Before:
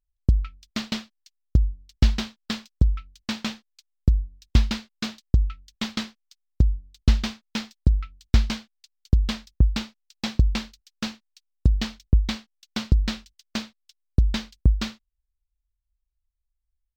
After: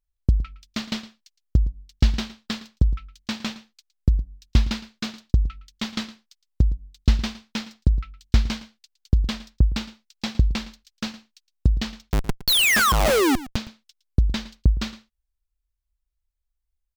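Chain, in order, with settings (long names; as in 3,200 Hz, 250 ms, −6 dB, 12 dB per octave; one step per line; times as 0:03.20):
0:12.47–0:13.36: sound drawn into the spectrogram fall 240–4,600 Hz −17 dBFS
0:12.02–0:13.56: comparator with hysteresis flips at −16.5 dBFS
single-tap delay 113 ms −17 dB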